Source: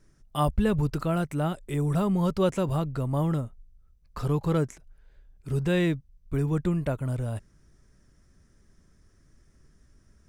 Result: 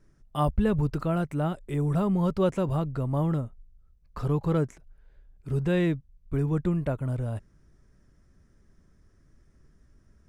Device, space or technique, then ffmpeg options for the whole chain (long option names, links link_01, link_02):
behind a face mask: -af "highshelf=frequency=2800:gain=-8"